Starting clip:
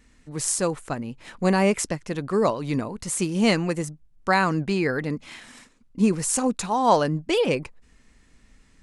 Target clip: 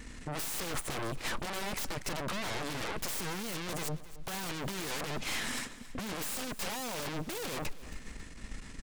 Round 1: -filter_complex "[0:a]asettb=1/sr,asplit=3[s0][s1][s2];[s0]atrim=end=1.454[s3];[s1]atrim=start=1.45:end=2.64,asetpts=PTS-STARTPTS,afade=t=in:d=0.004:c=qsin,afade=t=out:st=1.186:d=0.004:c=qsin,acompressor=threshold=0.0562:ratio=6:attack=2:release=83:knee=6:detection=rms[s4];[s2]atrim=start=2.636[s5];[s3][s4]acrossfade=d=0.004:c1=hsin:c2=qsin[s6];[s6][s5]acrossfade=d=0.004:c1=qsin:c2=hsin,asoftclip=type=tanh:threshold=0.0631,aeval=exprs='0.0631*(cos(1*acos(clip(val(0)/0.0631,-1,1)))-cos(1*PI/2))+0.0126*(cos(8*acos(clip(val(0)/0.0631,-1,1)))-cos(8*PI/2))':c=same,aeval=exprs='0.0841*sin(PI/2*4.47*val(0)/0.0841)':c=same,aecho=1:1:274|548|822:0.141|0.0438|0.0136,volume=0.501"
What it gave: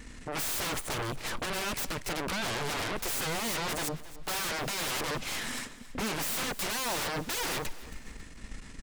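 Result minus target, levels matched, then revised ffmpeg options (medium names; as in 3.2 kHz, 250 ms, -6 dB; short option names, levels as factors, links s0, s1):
saturation: distortion -5 dB
-filter_complex "[0:a]asettb=1/sr,asplit=3[s0][s1][s2];[s0]atrim=end=1.454[s3];[s1]atrim=start=1.45:end=2.64,asetpts=PTS-STARTPTS,afade=t=in:d=0.004:c=qsin,afade=t=out:st=1.186:d=0.004:c=qsin,acompressor=threshold=0.0562:ratio=6:attack=2:release=83:knee=6:detection=rms[s4];[s2]atrim=start=2.636[s5];[s3][s4]acrossfade=d=0.004:c1=hsin:c2=qsin[s6];[s6][s5]acrossfade=d=0.004:c1=qsin:c2=hsin,asoftclip=type=tanh:threshold=0.0188,aeval=exprs='0.0631*(cos(1*acos(clip(val(0)/0.0631,-1,1)))-cos(1*PI/2))+0.0126*(cos(8*acos(clip(val(0)/0.0631,-1,1)))-cos(8*PI/2))':c=same,aeval=exprs='0.0841*sin(PI/2*4.47*val(0)/0.0841)':c=same,aecho=1:1:274|548|822:0.141|0.0438|0.0136,volume=0.501"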